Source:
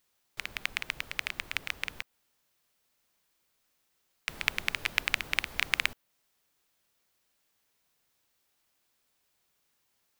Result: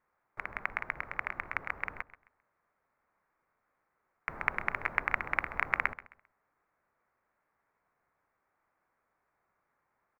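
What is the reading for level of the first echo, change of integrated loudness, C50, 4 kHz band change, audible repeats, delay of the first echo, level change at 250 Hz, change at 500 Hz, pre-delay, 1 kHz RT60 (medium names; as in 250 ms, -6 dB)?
-16.5 dB, -2.0 dB, no reverb, -22.5 dB, 2, 132 ms, +0.5 dB, +3.5 dB, no reverb, no reverb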